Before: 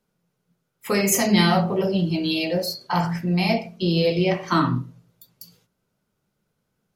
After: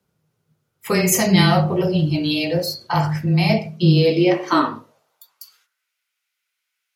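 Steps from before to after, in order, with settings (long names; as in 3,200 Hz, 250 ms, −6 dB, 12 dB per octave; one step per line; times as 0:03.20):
frequency shifter −17 Hz
high-pass filter sweep 62 Hz → 2,200 Hz, 0:03.16–0:05.92
level +2.5 dB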